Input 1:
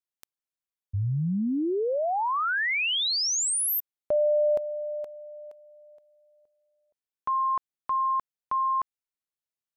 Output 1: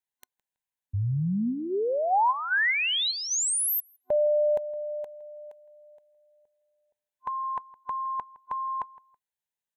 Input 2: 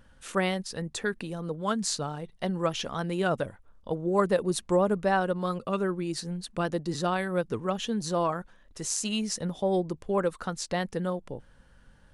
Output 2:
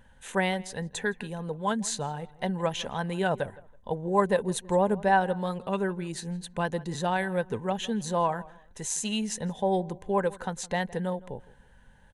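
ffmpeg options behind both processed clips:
-filter_complex "[0:a]superequalizer=6b=0.501:9b=1.78:10b=0.501:11b=1.41:14b=0.447,asplit=2[s0][s1];[s1]adelay=163,lowpass=f=2900:p=1,volume=0.1,asplit=2[s2][s3];[s3]adelay=163,lowpass=f=2900:p=1,volume=0.27[s4];[s0][s2][s4]amix=inputs=3:normalize=0"

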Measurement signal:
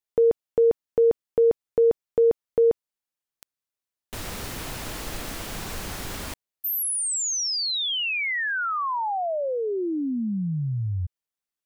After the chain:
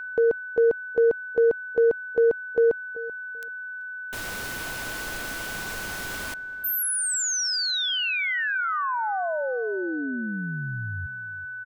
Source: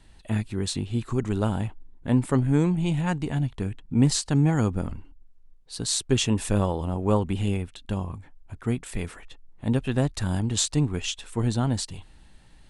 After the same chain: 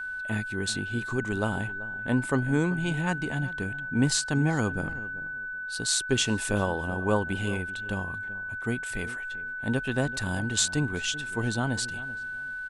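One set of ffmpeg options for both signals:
-filter_complex "[0:a]aeval=exprs='val(0)+0.0251*sin(2*PI*1500*n/s)':c=same,lowshelf=f=250:g=-7.5,asplit=2[s0][s1];[s1]adelay=385,lowpass=f=1400:p=1,volume=0.158,asplit=2[s2][s3];[s3]adelay=385,lowpass=f=1400:p=1,volume=0.23[s4];[s0][s2][s4]amix=inputs=3:normalize=0"

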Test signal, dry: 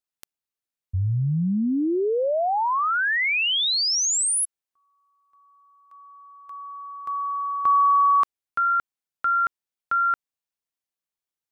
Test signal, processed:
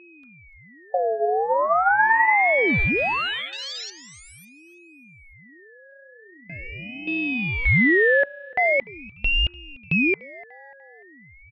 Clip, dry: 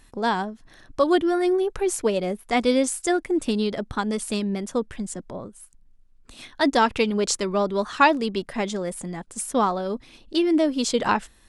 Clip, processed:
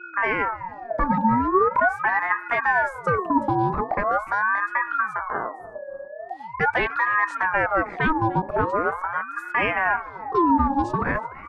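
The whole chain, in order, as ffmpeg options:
-filter_complex "[0:a]acrossover=split=350|2500[s0][s1][s2];[s0]acompressor=threshold=0.0251:ratio=6:release=512:knee=2.83:detection=peak[s3];[s3][s1][s2]amix=inputs=3:normalize=0,aemphasis=mode=reproduction:type=riaa,acrossover=split=170[s4][s5];[s5]acontrast=64[s6];[s4][s6]amix=inputs=2:normalize=0,alimiter=limit=0.316:level=0:latency=1:release=140,adynamicequalizer=threshold=0.0126:dfrequency=3200:dqfactor=1.1:tfrequency=3200:tqfactor=1.1:attack=5:release=100:ratio=0.375:range=3:mode=cutabove:tftype=bell,afwtdn=0.0562,bandreject=f=60:t=h:w=6,bandreject=f=120:t=h:w=6,bandreject=f=180:t=h:w=6,bandreject=f=240:t=h:w=6,bandreject=f=300:t=h:w=6,bandreject=f=360:t=h:w=6,bandreject=f=420:t=h:w=6,bandreject=f=480:t=h:w=6,bandreject=f=540:t=h:w=6,asplit=2[s7][s8];[s8]aecho=0:1:295|590|885:0.0891|0.0383|0.0165[s9];[s7][s9]amix=inputs=2:normalize=0,aeval=exprs='val(0)+0.00708*sin(2*PI*1100*n/s)':c=same,aeval=exprs='val(0)*sin(2*PI*1000*n/s+1000*0.45/0.42*sin(2*PI*0.42*n/s))':c=same"

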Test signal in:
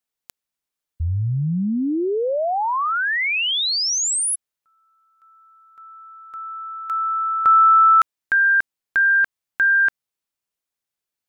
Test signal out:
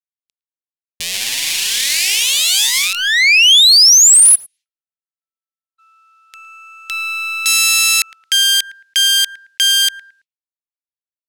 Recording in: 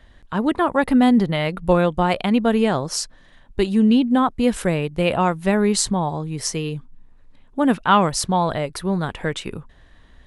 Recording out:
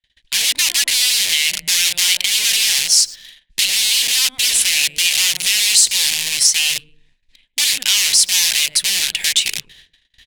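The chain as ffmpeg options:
-filter_complex "[0:a]agate=range=0.00708:threshold=0.00631:ratio=16:release=414:detection=peak,asplit=2[s0][s1];[s1]adelay=110,lowpass=f=1600:p=1,volume=0.119,asplit=2[s2][s3];[s3]adelay=110,lowpass=f=1600:p=1,volume=0.39,asplit=2[s4][s5];[s5]adelay=110,lowpass=f=1600:p=1,volume=0.39[s6];[s0][s2][s4][s6]amix=inputs=4:normalize=0,aeval=exprs='(tanh(6.31*val(0)+0.45)-tanh(0.45))/6.31':c=same,acrossover=split=1000[s7][s8];[s7]aeval=exprs='(mod(25.1*val(0)+1,2)-1)/25.1':c=same[s9];[s9][s8]amix=inputs=2:normalize=0,aexciter=amount=14.7:drive=8.8:freq=2000,adynamicsmooth=sensitivity=6.5:basefreq=3400,highshelf=f=7900:g=8,acompressor=threshold=1:ratio=4:attack=0.19:release=189:knee=6:detection=rms,volume=0.501"

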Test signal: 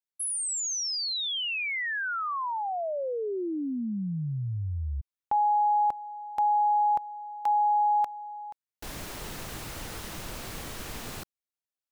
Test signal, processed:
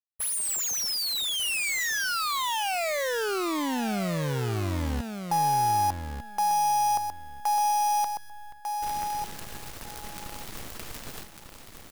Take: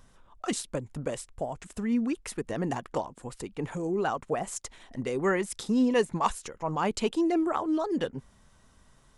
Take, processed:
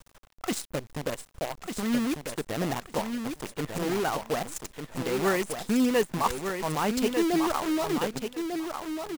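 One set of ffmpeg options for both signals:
-filter_complex "[0:a]acrusher=bits=6:dc=4:mix=0:aa=0.000001,asplit=2[s0][s1];[s1]aecho=0:1:1197|2394|3591:0.473|0.071|0.0106[s2];[s0][s2]amix=inputs=2:normalize=0"

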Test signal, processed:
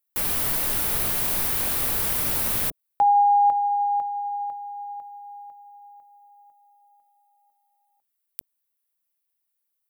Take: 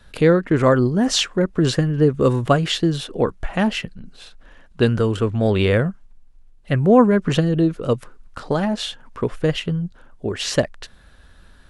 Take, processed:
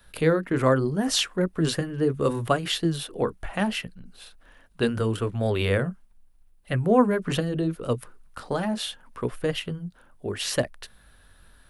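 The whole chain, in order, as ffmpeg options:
-filter_complex "[0:a]acrossover=split=540[s0][s1];[s0]flanger=delay=16:depth=6.9:speed=0.75[s2];[s1]aexciter=amount=4.6:drive=3.7:freq=9300[s3];[s2][s3]amix=inputs=2:normalize=0,volume=0.596"

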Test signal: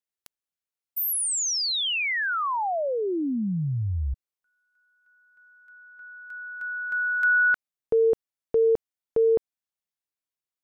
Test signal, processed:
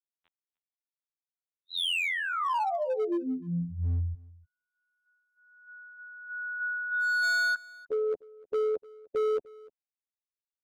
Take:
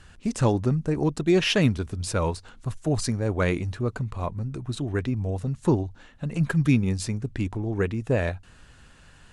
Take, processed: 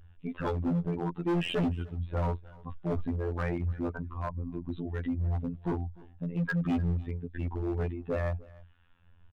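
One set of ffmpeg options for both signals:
-filter_complex "[0:a]equalizer=f=910:t=o:w=0.47:g=3.5,afftfilt=real='hypot(re,im)*cos(PI*b)':imag='0':win_size=2048:overlap=0.75,adynamicequalizer=threshold=0.00708:dfrequency=120:dqfactor=3:tfrequency=120:tqfactor=3:attack=5:release=100:ratio=0.375:range=1.5:mode=cutabove:tftype=bell,aresample=8000,asoftclip=type=tanh:threshold=0.106,aresample=44100,acrossover=split=840[s0][s1];[s0]aeval=exprs='val(0)*(1-0.5/2+0.5/2*cos(2*PI*1.3*n/s))':c=same[s2];[s1]aeval=exprs='val(0)*(1-0.5/2-0.5/2*cos(2*PI*1.3*n/s))':c=same[s3];[s2][s3]amix=inputs=2:normalize=0,afftdn=nr=14:nf=-42,asoftclip=type=hard:threshold=0.0398,aecho=1:1:301:0.075,volume=1.41"

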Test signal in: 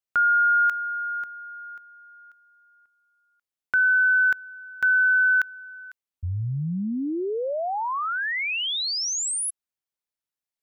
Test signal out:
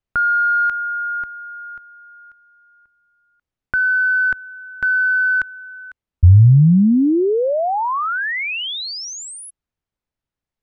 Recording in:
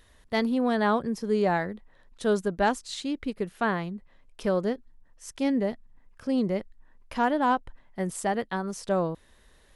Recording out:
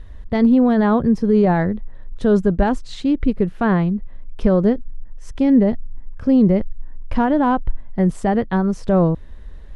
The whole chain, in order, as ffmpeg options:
-af "acontrast=53,alimiter=limit=0.224:level=0:latency=1:release=34,aemphasis=mode=reproduction:type=riaa,volume=1.12"

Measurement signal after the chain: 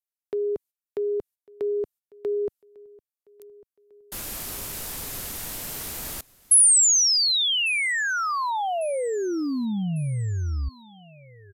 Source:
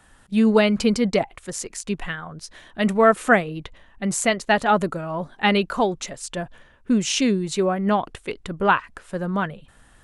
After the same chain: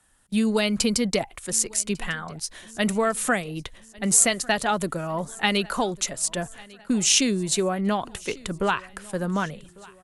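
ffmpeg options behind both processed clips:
-filter_complex "[0:a]agate=range=0.251:threshold=0.00501:ratio=16:detection=peak,aemphasis=mode=production:type=50fm,acrossover=split=120|3000[s0][s1][s2];[s1]acompressor=threshold=0.0891:ratio=4[s3];[s0][s3][s2]amix=inputs=3:normalize=0,aecho=1:1:1149|2298|3447:0.0668|0.0341|0.0174,aresample=32000,aresample=44100"

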